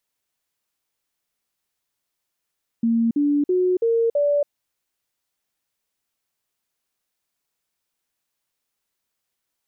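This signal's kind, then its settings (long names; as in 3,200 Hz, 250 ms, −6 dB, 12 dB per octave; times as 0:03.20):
stepped sweep 230 Hz up, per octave 3, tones 5, 0.28 s, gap 0.05 s −16 dBFS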